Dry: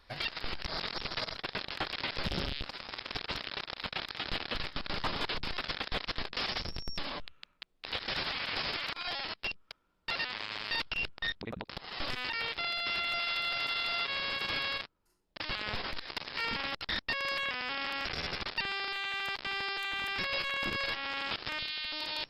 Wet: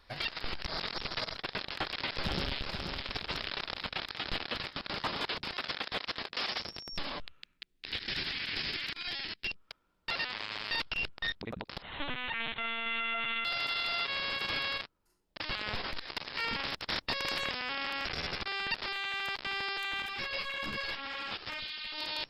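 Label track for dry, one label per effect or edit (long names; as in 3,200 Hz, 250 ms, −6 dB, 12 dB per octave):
1.740000	2.640000	delay throw 480 ms, feedback 30%, level −5.5 dB
3.350000	3.790000	envelope flattener amount 50%
4.440000	6.920000	high-pass filter 97 Hz → 370 Hz 6 dB per octave
7.420000	9.500000	flat-topped bell 800 Hz −10 dB
11.820000	13.450000	linear-prediction vocoder at 8 kHz pitch kept
16.630000	17.580000	ceiling on every frequency bin ceiling under each frame's peak by 15 dB
18.460000	18.860000	reverse
20.020000	21.980000	string-ensemble chorus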